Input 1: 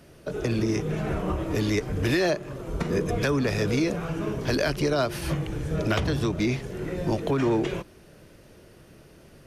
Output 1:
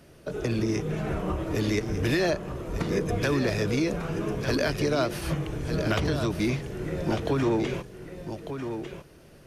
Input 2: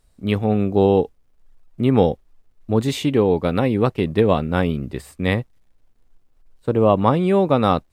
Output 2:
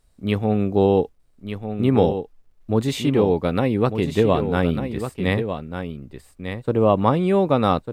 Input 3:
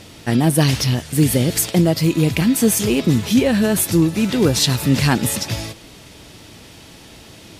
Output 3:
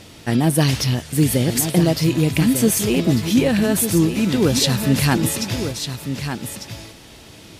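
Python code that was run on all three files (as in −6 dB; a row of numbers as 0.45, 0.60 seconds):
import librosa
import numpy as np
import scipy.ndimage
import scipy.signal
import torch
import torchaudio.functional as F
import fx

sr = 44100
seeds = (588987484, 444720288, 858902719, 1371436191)

y = x + 10.0 ** (-8.5 / 20.0) * np.pad(x, (int(1198 * sr / 1000.0), 0))[:len(x)]
y = F.gain(torch.from_numpy(y), -1.5).numpy()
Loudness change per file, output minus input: −1.5, −1.5, −1.5 LU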